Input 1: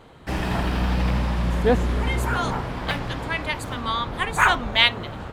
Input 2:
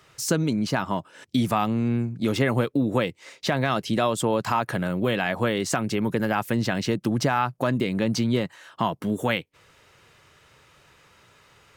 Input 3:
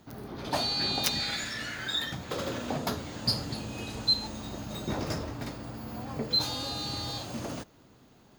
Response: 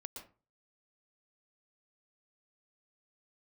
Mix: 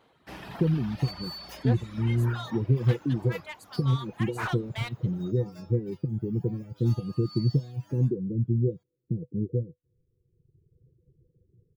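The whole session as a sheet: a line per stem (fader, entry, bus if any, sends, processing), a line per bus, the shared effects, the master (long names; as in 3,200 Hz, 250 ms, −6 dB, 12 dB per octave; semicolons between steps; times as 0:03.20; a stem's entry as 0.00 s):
−13.0 dB, 0.00 s, no send, high-pass filter 210 Hz 6 dB per octave; high-shelf EQ 3,300 Hz +4.5 dB
−4.0 dB, 0.30 s, no send, Chebyshev low-pass with heavy ripple 510 Hz, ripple 9 dB; spectral tilt −3.5 dB per octave
+1.0 dB, 0.45 s, no send, notch filter 4,100 Hz, Q 9; stiff-string resonator 100 Hz, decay 0.81 s, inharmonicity 0.002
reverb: not used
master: reverb reduction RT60 1.4 s; parametric band 7,900 Hz −6.5 dB 0.62 octaves; slew-rate limiting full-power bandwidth 52 Hz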